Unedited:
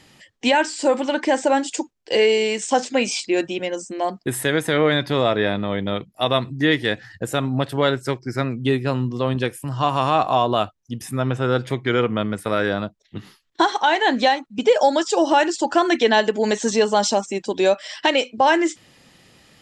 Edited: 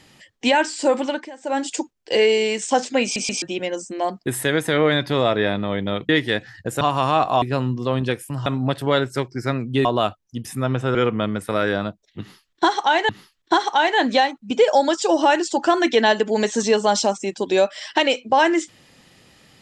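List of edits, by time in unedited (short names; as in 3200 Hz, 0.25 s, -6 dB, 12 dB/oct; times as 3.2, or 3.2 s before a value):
1.05–1.65 dip -20 dB, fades 0.25 s
3.03 stutter in place 0.13 s, 3 plays
6.09–6.65 cut
7.37–8.76 swap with 9.8–10.41
11.51–11.92 cut
13.17–14.06 loop, 2 plays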